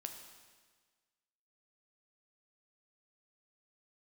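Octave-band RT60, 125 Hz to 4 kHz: 1.5 s, 1.5 s, 1.5 s, 1.5 s, 1.5 s, 1.5 s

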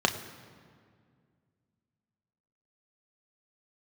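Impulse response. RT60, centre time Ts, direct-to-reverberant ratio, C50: 2.1 s, 18 ms, 4.5 dB, 11.5 dB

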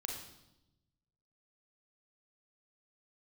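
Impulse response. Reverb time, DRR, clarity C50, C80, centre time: 0.90 s, 1.0 dB, 4.0 dB, 7.0 dB, 37 ms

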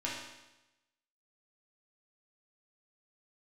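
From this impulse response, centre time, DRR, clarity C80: 61 ms, -6.0 dB, 4.5 dB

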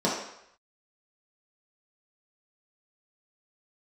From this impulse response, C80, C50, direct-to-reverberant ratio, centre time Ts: 6.0 dB, 2.5 dB, -6.5 dB, 49 ms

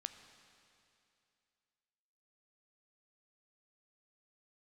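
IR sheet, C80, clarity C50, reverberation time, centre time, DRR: 10.5 dB, 10.0 dB, 2.6 s, 24 ms, 9.0 dB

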